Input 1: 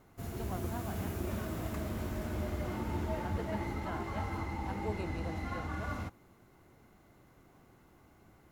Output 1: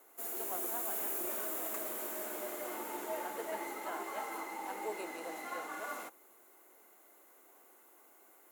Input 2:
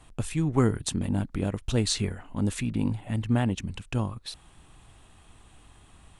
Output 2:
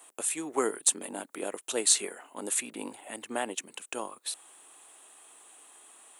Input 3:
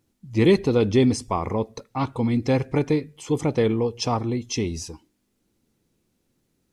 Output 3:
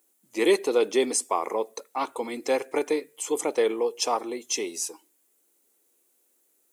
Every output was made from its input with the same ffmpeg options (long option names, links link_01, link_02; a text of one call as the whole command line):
ffmpeg -i in.wav -af "highpass=frequency=370:width=0.5412,highpass=frequency=370:width=1.3066,aexciter=amount=3.9:drive=6.1:freq=7000" out.wav